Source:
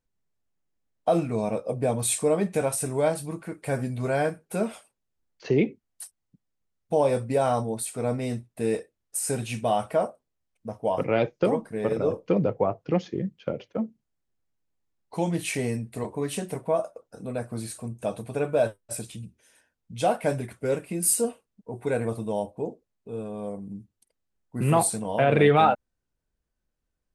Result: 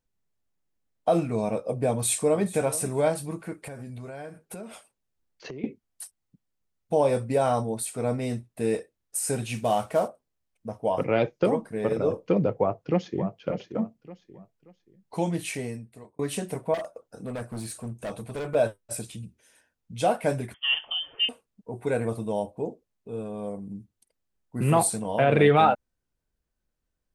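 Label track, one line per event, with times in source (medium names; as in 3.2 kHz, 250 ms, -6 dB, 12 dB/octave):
1.910000	2.650000	echo throw 430 ms, feedback 15%, level -17 dB
3.590000	5.640000	compression 12:1, threshold -35 dBFS
9.550000	10.080000	CVSD coder 64 kbps
12.590000	13.350000	echo throw 580 ms, feedback 30%, level -9.5 dB
15.190000	16.190000	fade out
16.740000	18.550000	hard clipper -29.5 dBFS
20.540000	21.290000	frequency inversion carrier 3.3 kHz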